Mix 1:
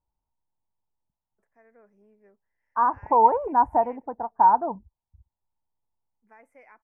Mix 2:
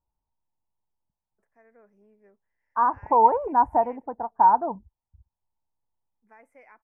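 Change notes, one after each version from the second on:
none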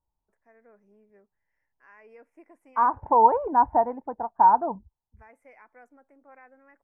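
first voice: entry -1.10 s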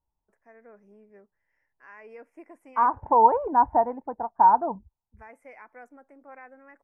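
first voice +5.5 dB

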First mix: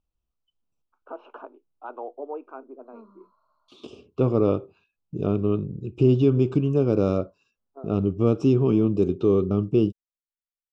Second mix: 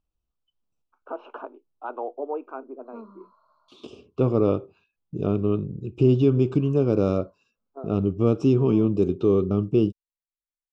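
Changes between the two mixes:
first voice +4.0 dB; background +6.0 dB

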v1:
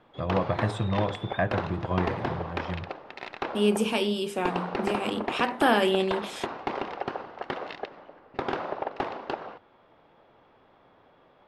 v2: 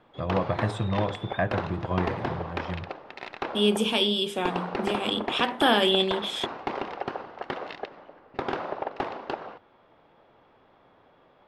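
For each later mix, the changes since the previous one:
second voice: add bell 3400 Hz +15 dB 0.21 oct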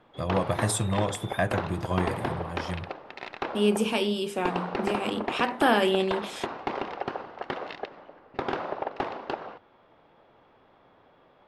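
first voice: remove LPF 2600 Hz 12 dB/oct; second voice: add bell 3400 Hz -15 dB 0.21 oct

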